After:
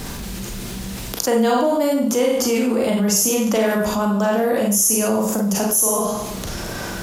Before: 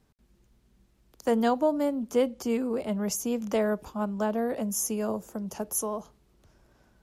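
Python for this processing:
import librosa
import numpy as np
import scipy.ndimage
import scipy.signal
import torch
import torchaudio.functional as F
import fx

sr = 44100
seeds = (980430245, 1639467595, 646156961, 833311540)

y = fx.high_shelf(x, sr, hz=2200.0, db=7.5)
y = fx.rev_schroeder(y, sr, rt60_s=0.5, comb_ms=32, drr_db=-2.0)
y = fx.env_flatten(y, sr, amount_pct=70)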